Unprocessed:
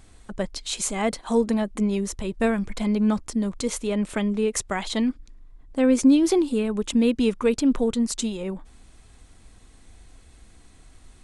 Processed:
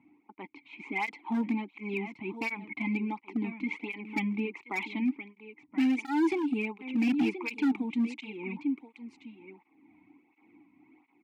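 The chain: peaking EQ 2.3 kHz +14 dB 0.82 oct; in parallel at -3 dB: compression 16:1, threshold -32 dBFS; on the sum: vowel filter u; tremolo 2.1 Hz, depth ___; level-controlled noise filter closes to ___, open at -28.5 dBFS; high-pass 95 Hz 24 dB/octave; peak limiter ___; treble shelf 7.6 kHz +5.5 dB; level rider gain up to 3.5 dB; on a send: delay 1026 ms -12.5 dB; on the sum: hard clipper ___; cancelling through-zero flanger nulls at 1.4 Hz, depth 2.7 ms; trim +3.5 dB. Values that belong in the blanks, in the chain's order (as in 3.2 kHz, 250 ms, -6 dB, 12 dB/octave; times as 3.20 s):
38%, 1.1 kHz, -17.5 dBFS, -25 dBFS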